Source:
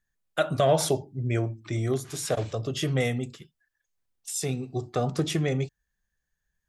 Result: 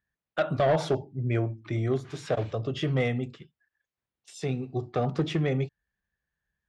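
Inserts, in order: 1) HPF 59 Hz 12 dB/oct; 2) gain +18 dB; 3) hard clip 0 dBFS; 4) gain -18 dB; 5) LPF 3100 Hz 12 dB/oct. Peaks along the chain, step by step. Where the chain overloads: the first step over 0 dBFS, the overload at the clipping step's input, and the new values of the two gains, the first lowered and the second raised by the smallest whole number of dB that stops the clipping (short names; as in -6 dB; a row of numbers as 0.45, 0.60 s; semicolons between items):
-10.5, +7.5, 0.0, -18.0, -17.5 dBFS; step 2, 7.5 dB; step 2 +10 dB, step 4 -10 dB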